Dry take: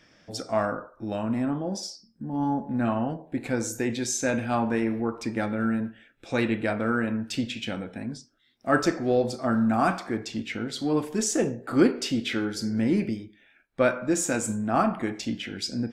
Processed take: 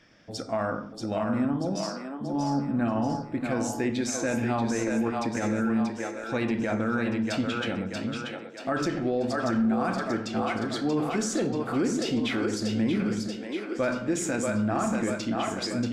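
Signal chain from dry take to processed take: on a send: split-band echo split 310 Hz, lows 84 ms, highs 0.634 s, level -5 dB; on the sum: limiter -18 dBFS, peak gain reduction 10 dB; high shelf 7700 Hz -7.5 dB

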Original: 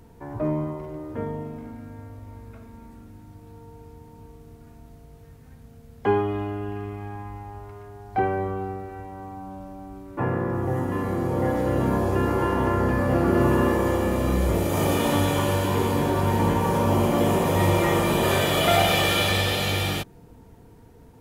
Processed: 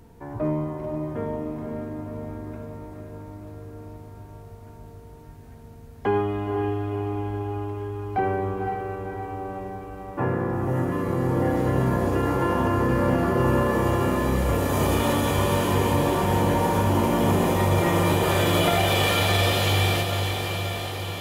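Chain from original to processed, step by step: limiter -13.5 dBFS, peak gain reduction 5.5 dB; diffused feedback echo 0.513 s, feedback 69%, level -6 dB

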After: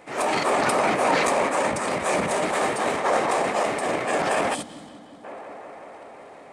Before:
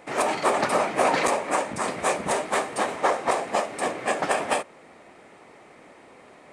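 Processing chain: transient shaper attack -4 dB, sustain +11 dB; tape echo 0.182 s, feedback 89%, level -11.5 dB, low-pass 3300 Hz; spectral gain 4.54–5.24, 340–2900 Hz -13 dB

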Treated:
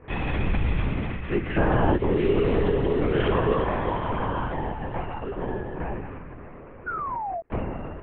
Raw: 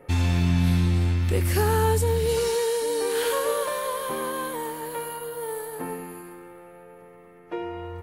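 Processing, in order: mistuned SSB -73 Hz 160–3000 Hz; gate with hold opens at -42 dBFS; painted sound fall, 6.86–7.41, 650–1500 Hz -33 dBFS; LPC vocoder at 8 kHz whisper; gain +3 dB

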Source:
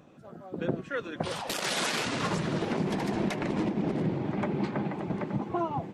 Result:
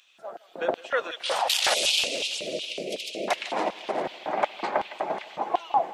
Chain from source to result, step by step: 1.74–3.28 elliptic band-stop 560–2500 Hz, stop band 40 dB; LFO high-pass square 2.7 Hz 680–3100 Hz; thinning echo 0.161 s, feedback 64%, high-pass 330 Hz, level -19 dB; gain +6.5 dB

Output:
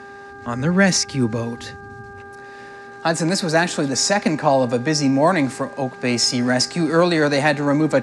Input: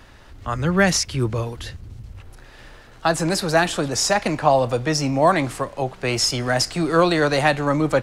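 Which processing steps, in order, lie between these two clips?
buzz 400 Hz, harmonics 4, -38 dBFS -1 dB/oct; speaker cabinet 140–9400 Hz, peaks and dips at 240 Hz +9 dB, 380 Hz -4 dB, 720 Hz -4 dB, 1200 Hz -7 dB, 3100 Hz -8 dB; gain +2.5 dB

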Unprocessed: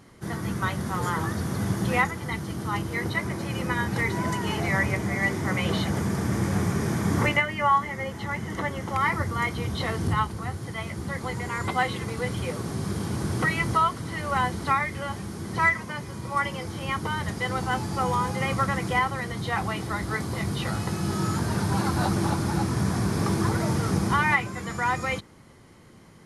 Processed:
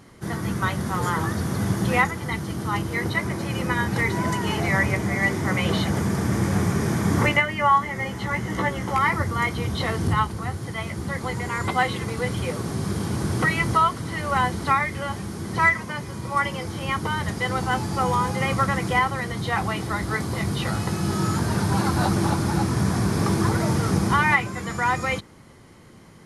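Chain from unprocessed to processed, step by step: 7.94–8.99 doubler 16 ms -4 dB; gain +3 dB

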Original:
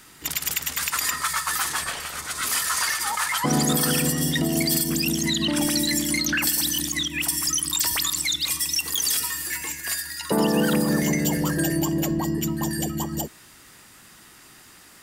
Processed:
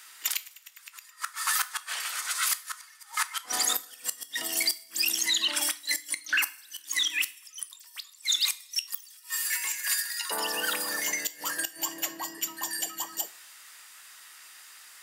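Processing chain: HPF 1200 Hz 12 dB/oct; flipped gate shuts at -14 dBFS, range -29 dB; two-slope reverb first 0.35 s, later 1.5 s, from -19 dB, DRR 11 dB

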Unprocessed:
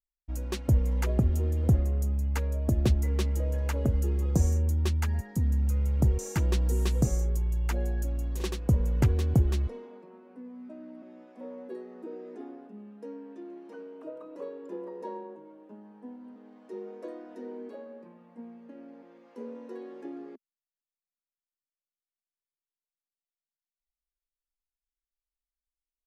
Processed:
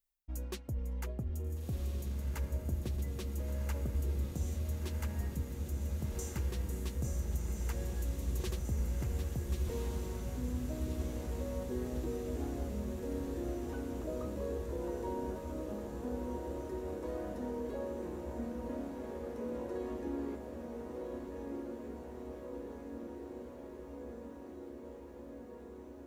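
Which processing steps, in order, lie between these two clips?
high shelf 11000 Hz +8.5 dB; reverse; compressor 5:1, threshold -41 dBFS, peak gain reduction 20.5 dB; reverse; diffused feedback echo 1.415 s, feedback 78%, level -4 dB; gain +3.5 dB

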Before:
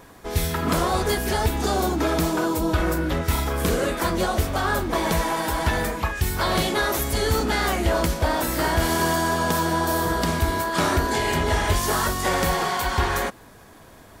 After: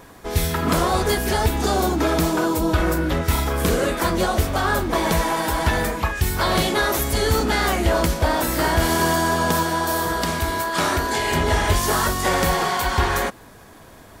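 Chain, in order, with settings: 9.63–11.32 low shelf 500 Hz -5.5 dB; gain +2.5 dB

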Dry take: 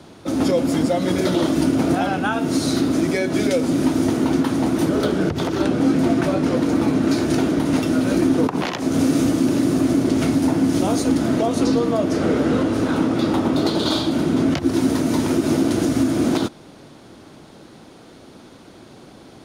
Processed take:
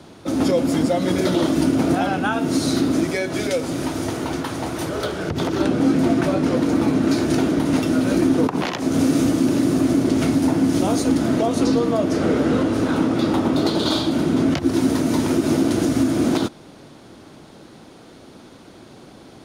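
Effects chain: 3.03–5.28 bell 240 Hz -6 dB -> -14 dB 1.2 oct

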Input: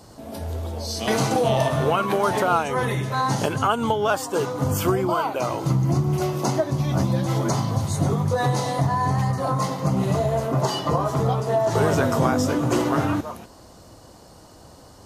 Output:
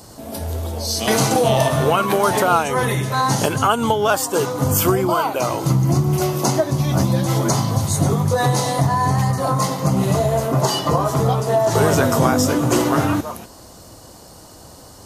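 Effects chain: high shelf 6600 Hz +10 dB; gain +4 dB

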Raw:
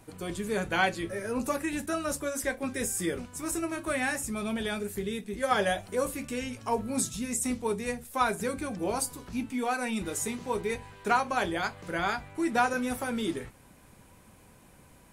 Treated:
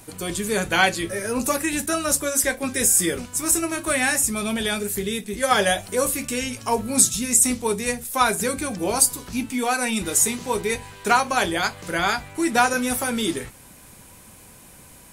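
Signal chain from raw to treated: high shelf 3300 Hz +10.5 dB; gain +6 dB

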